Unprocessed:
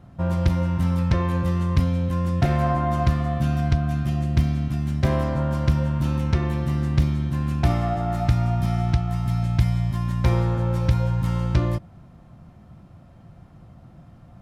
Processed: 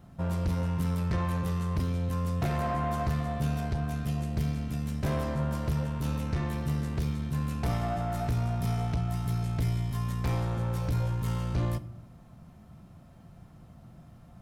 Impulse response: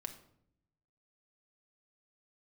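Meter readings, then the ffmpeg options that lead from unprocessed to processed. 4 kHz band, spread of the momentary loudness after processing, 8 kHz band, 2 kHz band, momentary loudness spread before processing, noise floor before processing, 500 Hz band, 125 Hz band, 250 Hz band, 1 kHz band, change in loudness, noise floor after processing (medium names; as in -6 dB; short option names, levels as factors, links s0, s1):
-6.0 dB, 2 LU, no reading, -6.5 dB, 3 LU, -48 dBFS, -7.0 dB, -8.0 dB, -7.5 dB, -6.5 dB, -8.0 dB, -53 dBFS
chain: -filter_complex "[0:a]crystalizer=i=1.5:c=0,asoftclip=type=tanh:threshold=0.112,asplit=2[s0][s1];[1:a]atrim=start_sample=2205[s2];[s1][s2]afir=irnorm=-1:irlink=0,volume=1[s3];[s0][s3]amix=inputs=2:normalize=0,volume=0.355"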